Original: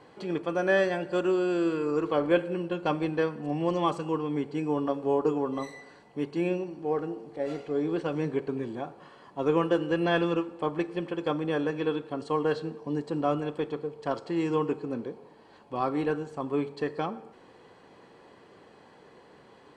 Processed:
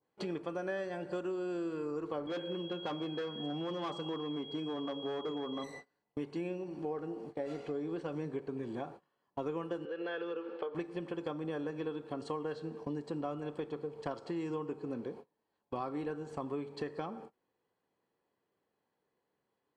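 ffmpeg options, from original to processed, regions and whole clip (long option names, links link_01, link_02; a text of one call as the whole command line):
ffmpeg -i in.wav -filter_complex "[0:a]asettb=1/sr,asplit=3[link_01][link_02][link_03];[link_01]atrim=end=2.274[link_04];[link_02]atrim=start=2.27:end=5.64,asetpts=PTS-STARTPTS,afade=type=in:duration=0.004:curve=qsin,afade=type=out:start_time=3.366:duration=0.004:curve=qsin,volume=25.5dB,asoftclip=hard,volume=-25.5dB,aeval=exprs='val(0)+0.0141*sin(2*PI*3300*n/s)':channel_layout=same,highpass=150,lowpass=5900[link_05];[link_03]atrim=start=5.636[link_06];[link_04][link_05]acrossfade=duration=0.004:curve1=hsin:curve2=qsin[link_07];[link_07][link_06]acrossfade=duration=0.004:curve1=qsin:curve2=hsin,asettb=1/sr,asplit=3[link_08][link_09][link_10];[link_08]atrim=end=9.854[link_11];[link_09]atrim=start=9.85:end=10.75,asetpts=PTS-STARTPTS,afade=type=in:duration=0.004:curve=qsin,afade=type=out:start_time=0.896:duration=0.004:curve=qsin,highpass=frequency=270:width=0.5412,highpass=frequency=270:width=1.3066,equalizer=frequency=300:width_type=q:width=4:gain=-7,equalizer=frequency=460:width_type=q:width=4:gain=9,equalizer=frequency=700:width_type=q:width=4:gain=-5,equalizer=frequency=1000:width_type=q:width=4:gain=-5,equalizer=frequency=1500:width_type=q:width=4:gain=7,equalizer=frequency=3100:width_type=q:width=4:gain=3,lowpass=frequency=4700:width=0.5412,lowpass=frequency=4700:width=1.3066,acompressor=threshold=-31dB:ratio=3:attack=3.2:release=140:knee=1:detection=peak[link_12];[link_10]atrim=start=10.746[link_13];[link_11][link_12]acrossfade=duration=0.004:curve1=hsin:curve2=qsin[link_14];[link_14][link_13]acrossfade=duration=0.004:curve1=qsin:curve2=hsin,agate=range=-31dB:threshold=-44dB:ratio=16:detection=peak,adynamicequalizer=threshold=0.00501:dfrequency=2600:dqfactor=0.92:tfrequency=2600:tqfactor=0.92:attack=5:release=100:ratio=0.375:range=2.5:mode=cutabove:tftype=bell,acompressor=threshold=-38dB:ratio=5,volume=2dB" out.wav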